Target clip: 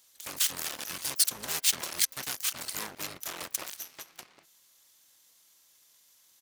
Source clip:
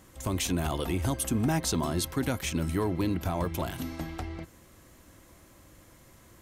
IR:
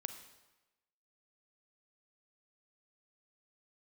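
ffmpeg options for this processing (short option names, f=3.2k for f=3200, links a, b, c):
-filter_complex "[0:a]aeval=exprs='0.133*(cos(1*acos(clip(val(0)/0.133,-1,1)))-cos(1*PI/2))+0.00944*(cos(5*acos(clip(val(0)/0.133,-1,1)))-cos(5*PI/2))+0.0335*(cos(7*acos(clip(val(0)/0.133,-1,1)))-cos(7*PI/2))+0.00422*(cos(8*acos(clip(val(0)/0.133,-1,1)))-cos(8*PI/2))':c=same,aderivative,asplit=3[a][b][c];[b]asetrate=22050,aresample=44100,atempo=2,volume=-2dB[d];[c]asetrate=88200,aresample=44100,atempo=0.5,volume=-15dB[e];[a][d][e]amix=inputs=3:normalize=0,volume=4.5dB"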